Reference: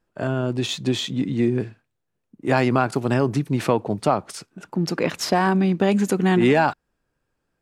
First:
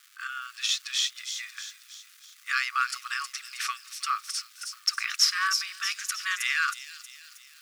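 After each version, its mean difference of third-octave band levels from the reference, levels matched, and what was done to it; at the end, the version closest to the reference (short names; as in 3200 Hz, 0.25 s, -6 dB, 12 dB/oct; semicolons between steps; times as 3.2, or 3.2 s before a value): 23.0 dB: bell 5500 Hz +9 dB 0.32 oct; crackle 570/s -41 dBFS; brick-wall FIR high-pass 1100 Hz; thin delay 0.317 s, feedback 51%, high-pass 5000 Hz, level -3.5 dB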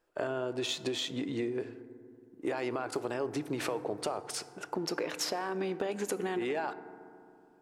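6.5 dB: resonant low shelf 280 Hz -10.5 dB, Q 1.5; limiter -14 dBFS, peak gain reduction 8 dB; compressor 6:1, threshold -31 dBFS, peak gain reduction 12 dB; FDN reverb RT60 2.5 s, low-frequency decay 1.35×, high-frequency decay 0.3×, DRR 13 dB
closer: second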